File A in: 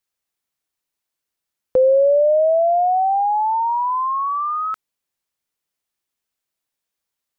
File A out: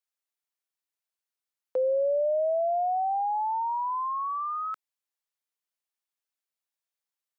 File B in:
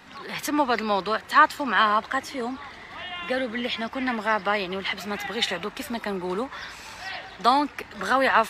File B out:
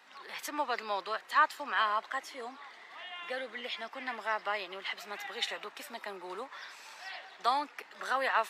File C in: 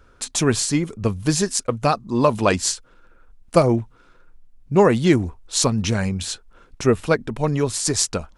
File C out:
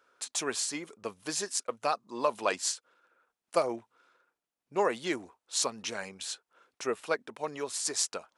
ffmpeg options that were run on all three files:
ffmpeg -i in.wav -af "highpass=500,volume=-9dB" out.wav

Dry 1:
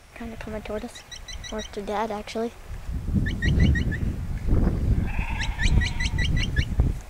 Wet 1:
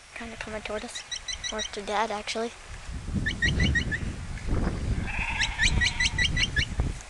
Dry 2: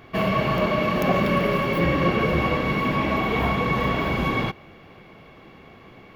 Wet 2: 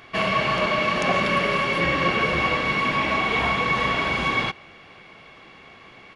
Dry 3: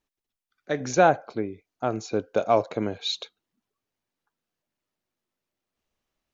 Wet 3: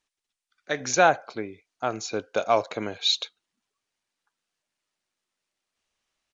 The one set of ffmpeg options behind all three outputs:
ffmpeg -i in.wav -af "tiltshelf=frequency=780:gain=-6.5,aresample=22050,aresample=44100" out.wav

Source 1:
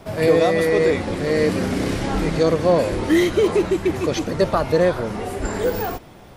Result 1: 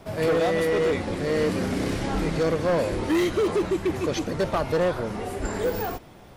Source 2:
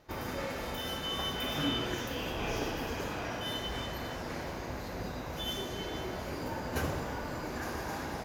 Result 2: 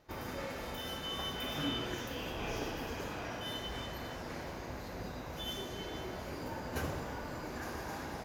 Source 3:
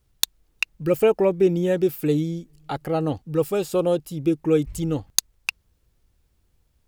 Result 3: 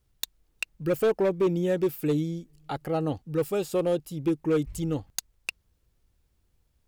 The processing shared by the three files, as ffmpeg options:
ffmpeg -i in.wav -af "volume=14.5dB,asoftclip=hard,volume=-14.5dB,volume=-4dB" out.wav

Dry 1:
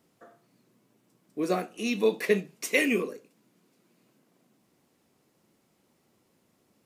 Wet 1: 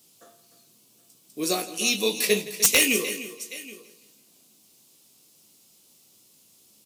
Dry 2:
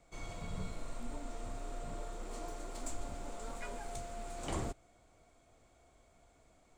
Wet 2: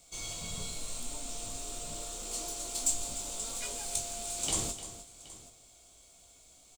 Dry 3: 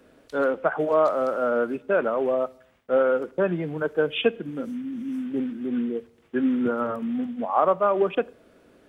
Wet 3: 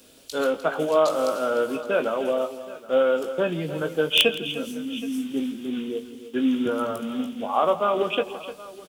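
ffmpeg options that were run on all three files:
ffmpeg -i in.wav -filter_complex "[0:a]aexciter=amount=4.2:drive=8.3:freq=2700,asplit=2[link_01][link_02];[link_02]adelay=19,volume=-8dB[link_03];[link_01][link_03]amix=inputs=2:normalize=0,asplit=2[link_04][link_05];[link_05]aecho=0:1:302|773:0.211|0.112[link_06];[link_04][link_06]amix=inputs=2:normalize=0,aeval=exprs='(mod(1.88*val(0)+1,2)-1)/1.88':channel_layout=same,asplit=2[link_07][link_08];[link_08]aecho=0:1:166|332|498|664:0.141|0.0593|0.0249|0.0105[link_09];[link_07][link_09]amix=inputs=2:normalize=0,volume=-1.5dB" out.wav

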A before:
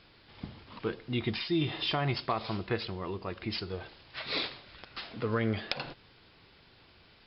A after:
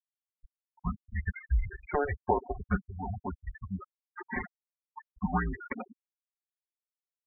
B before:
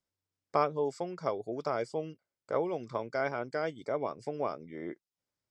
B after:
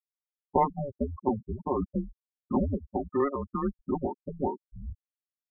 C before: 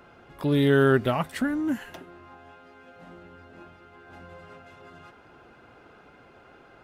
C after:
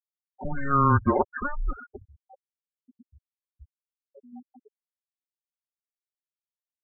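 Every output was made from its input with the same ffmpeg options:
ffmpeg -i in.wav -filter_complex "[0:a]aecho=1:1:5.9:0.84,asplit=2[link_01][link_02];[link_02]aeval=exprs='sgn(val(0))*max(abs(val(0))-0.00335,0)':channel_layout=same,volume=-9dB[link_03];[link_01][link_03]amix=inputs=2:normalize=0,highpass=frequency=350:width_type=q:width=0.5412,highpass=frequency=350:width_type=q:width=1.307,lowpass=frequency=2300:width_type=q:width=0.5176,lowpass=frequency=2300:width_type=q:width=0.7071,lowpass=frequency=2300:width_type=q:width=1.932,afreqshift=-280,afftfilt=real='re*gte(hypot(re,im),0.0562)':imag='im*gte(hypot(re,im),0.0562)':win_size=1024:overlap=0.75" out.wav

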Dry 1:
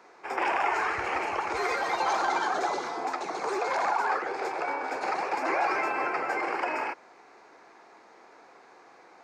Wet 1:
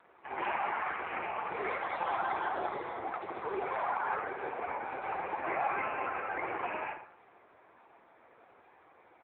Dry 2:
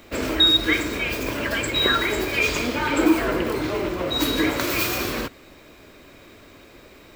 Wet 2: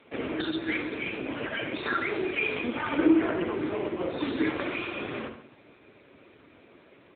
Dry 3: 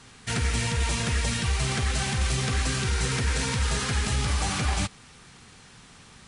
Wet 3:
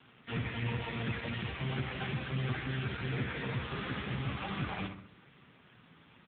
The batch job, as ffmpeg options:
ffmpeg -i in.wav -filter_complex "[0:a]highpass=83,asplit=2[link_01][link_02];[link_02]adelay=67,lowpass=frequency=2600:poles=1,volume=-7dB,asplit=2[link_03][link_04];[link_04]adelay=67,lowpass=frequency=2600:poles=1,volume=0.52,asplit=2[link_05][link_06];[link_06]adelay=67,lowpass=frequency=2600:poles=1,volume=0.52,asplit=2[link_07][link_08];[link_08]adelay=67,lowpass=frequency=2600:poles=1,volume=0.52,asplit=2[link_09][link_10];[link_10]adelay=67,lowpass=frequency=2600:poles=1,volume=0.52,asplit=2[link_11][link_12];[link_12]adelay=67,lowpass=frequency=2600:poles=1,volume=0.52[link_13];[link_03][link_05][link_07][link_09][link_11][link_13]amix=inputs=6:normalize=0[link_14];[link_01][link_14]amix=inputs=2:normalize=0,volume=-4dB" -ar 8000 -c:a libopencore_amrnb -b:a 5900 out.amr

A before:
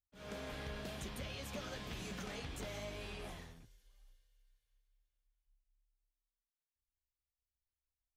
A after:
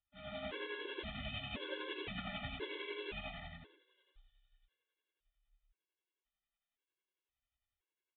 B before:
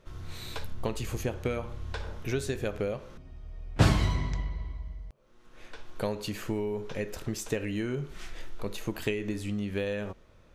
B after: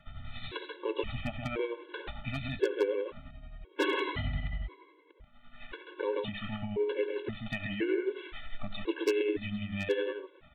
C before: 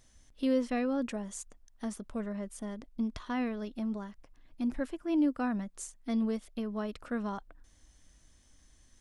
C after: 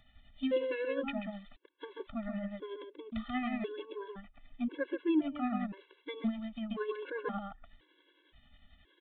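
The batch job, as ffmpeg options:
ffmpeg -i in.wav -filter_complex "[0:a]asplit=2[link_01][link_02];[link_02]acompressor=threshold=-46dB:ratio=4,volume=-1.5dB[link_03];[link_01][link_03]amix=inputs=2:normalize=0,equalizer=frequency=380:width=2.8:gain=9.5,acrossover=split=160[link_04][link_05];[link_04]volume=22dB,asoftclip=hard,volume=-22dB[link_06];[link_06][link_05]amix=inputs=2:normalize=0,aecho=1:1:134:0.668,tremolo=f=11:d=0.48,tiltshelf=frequency=1100:gain=-5,aresample=8000,aresample=44100,aeval=exprs='0.126*(abs(mod(val(0)/0.126+3,4)-2)-1)':channel_layout=same,afftfilt=real='re*gt(sin(2*PI*0.96*pts/sr)*(1-2*mod(floor(b*sr/1024/290),2)),0)':imag='im*gt(sin(2*PI*0.96*pts/sr)*(1-2*mod(floor(b*sr/1024/290),2)),0)':win_size=1024:overlap=0.75,volume=1.5dB" out.wav

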